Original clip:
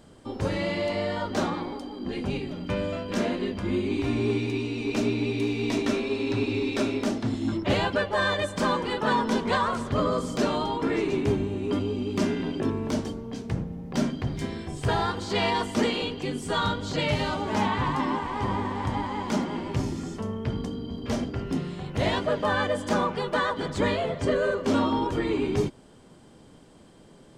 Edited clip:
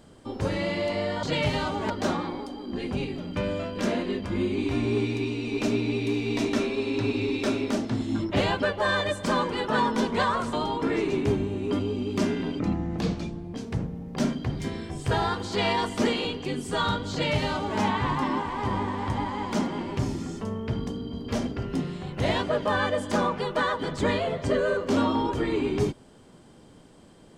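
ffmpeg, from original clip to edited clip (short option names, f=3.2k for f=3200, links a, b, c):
-filter_complex "[0:a]asplit=6[a][b][c][d][e][f];[a]atrim=end=1.232[g];[b]atrim=start=16.888:end=17.562[h];[c]atrim=start=1.228:end=9.862[i];[d]atrim=start=10.528:end=12.594[j];[e]atrim=start=12.59:end=13.31,asetpts=PTS-STARTPTS,asetrate=33516,aresample=44100[k];[f]atrim=start=13.306[l];[g][h]acrossfade=d=0.004:c1=hsin:c2=hsin[m];[m][i]acrossfade=d=0.004:c1=hsin:c2=hsin[n];[n][j]acrossfade=d=0.004:c1=hsin:c2=hsin[o];[o][k]acrossfade=d=0.004:c1=hsin:c2=hsin[p];[p][l]acrossfade=d=0.004:c1=hsin:c2=hsin"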